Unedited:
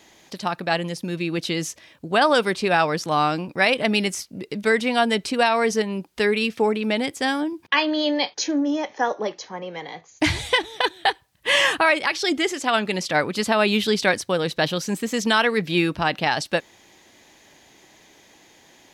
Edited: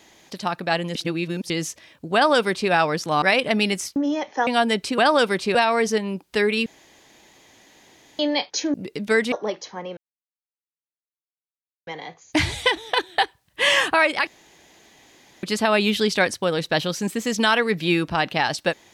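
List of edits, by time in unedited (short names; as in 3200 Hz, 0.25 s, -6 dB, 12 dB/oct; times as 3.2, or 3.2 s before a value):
0.95–1.5 reverse
2.14–2.71 copy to 5.39
3.22–3.56 cut
4.3–4.88 swap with 8.58–9.09
6.5–8.03 room tone
9.74 insert silence 1.90 s
12.14–13.3 room tone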